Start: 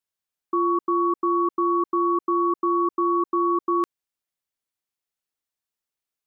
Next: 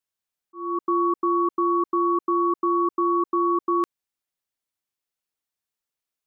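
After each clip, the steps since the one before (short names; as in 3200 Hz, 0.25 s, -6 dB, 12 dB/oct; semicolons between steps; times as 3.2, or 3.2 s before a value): auto swell 0.343 s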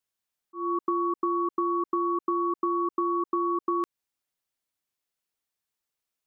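compressor, threshold -25 dBFS, peak gain reduction 6.5 dB; gain +1 dB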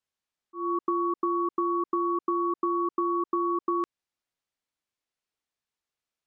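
air absorption 57 m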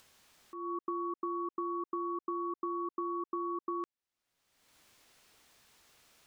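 upward compressor, threshold -29 dBFS; gain -9 dB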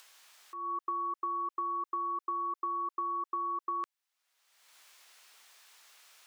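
HPF 860 Hz 12 dB/oct; gain +6 dB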